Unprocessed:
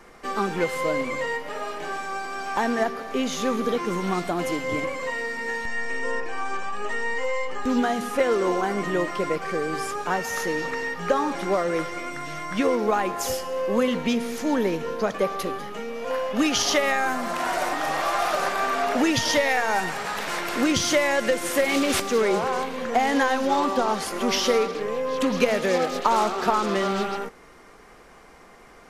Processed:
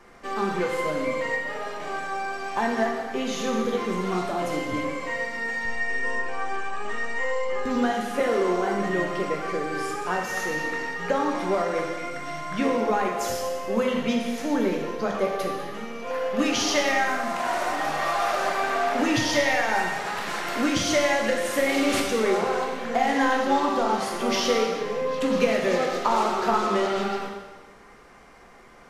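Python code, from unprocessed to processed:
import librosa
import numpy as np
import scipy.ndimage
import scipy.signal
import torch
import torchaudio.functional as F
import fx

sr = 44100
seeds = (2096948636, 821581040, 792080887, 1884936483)

y = fx.high_shelf(x, sr, hz=8000.0, db=-5.5)
y = fx.rev_plate(y, sr, seeds[0], rt60_s=1.2, hf_ratio=1.0, predelay_ms=0, drr_db=0.0)
y = F.gain(torch.from_numpy(y), -3.5).numpy()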